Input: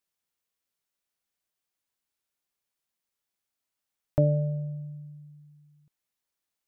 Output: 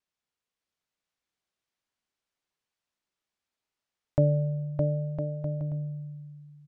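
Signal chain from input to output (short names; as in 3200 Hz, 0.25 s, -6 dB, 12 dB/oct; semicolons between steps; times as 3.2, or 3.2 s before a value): air absorption 73 m; bouncing-ball echo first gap 0.61 s, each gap 0.65×, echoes 5; vibrato 0.42 Hz 12 cents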